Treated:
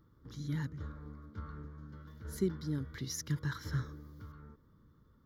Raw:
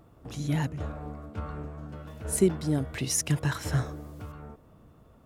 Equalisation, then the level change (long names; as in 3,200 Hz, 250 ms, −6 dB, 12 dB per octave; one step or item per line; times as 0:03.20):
phaser with its sweep stopped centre 2,600 Hz, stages 6
−7.5 dB